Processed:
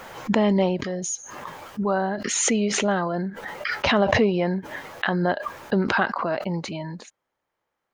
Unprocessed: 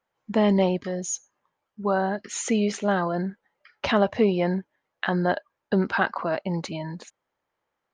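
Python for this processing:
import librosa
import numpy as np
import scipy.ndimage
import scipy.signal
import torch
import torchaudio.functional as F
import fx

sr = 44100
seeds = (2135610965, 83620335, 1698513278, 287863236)

y = fx.pre_swell(x, sr, db_per_s=31.0)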